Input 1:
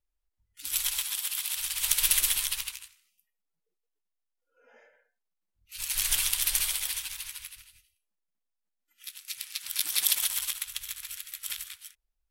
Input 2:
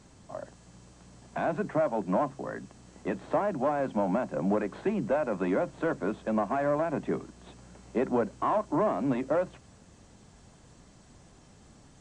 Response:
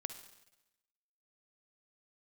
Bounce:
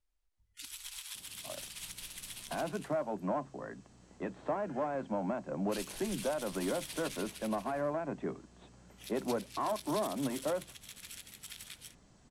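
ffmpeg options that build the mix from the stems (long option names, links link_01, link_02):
-filter_complex "[0:a]acompressor=threshold=-33dB:ratio=2,alimiter=level_in=5.5dB:limit=-24dB:level=0:latency=1:release=423,volume=-5.5dB,volume=1dB[link_01];[1:a]adelay=1150,volume=-7dB[link_02];[link_01][link_02]amix=inputs=2:normalize=0,lowpass=10000"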